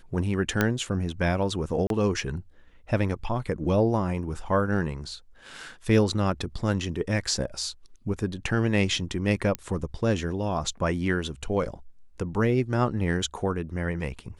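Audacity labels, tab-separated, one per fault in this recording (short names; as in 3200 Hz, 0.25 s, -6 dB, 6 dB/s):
0.610000	0.610000	pop -8 dBFS
1.870000	1.900000	gap 32 ms
9.550000	9.550000	pop -13 dBFS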